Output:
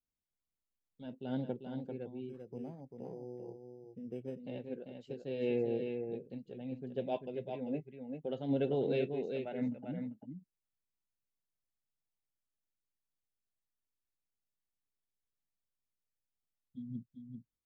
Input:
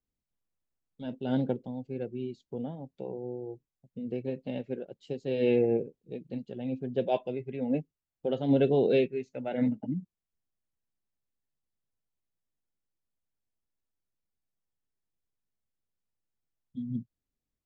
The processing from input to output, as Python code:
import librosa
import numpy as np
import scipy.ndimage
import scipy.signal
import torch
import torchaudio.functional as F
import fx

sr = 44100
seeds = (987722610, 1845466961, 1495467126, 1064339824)

y = x + 10.0 ** (-6.0 / 20.0) * np.pad(x, (int(393 * sr / 1000.0), 0))[:len(x)]
y = fx.resample_linear(y, sr, factor=8, at=(2.29, 4.4))
y = F.gain(torch.from_numpy(y), -8.5).numpy()